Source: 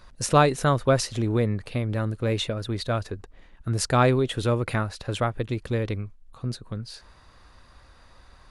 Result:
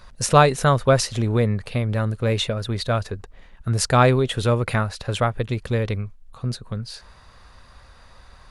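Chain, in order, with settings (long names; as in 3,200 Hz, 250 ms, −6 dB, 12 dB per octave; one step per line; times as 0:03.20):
parametric band 310 Hz −8 dB 0.38 octaves
level +4.5 dB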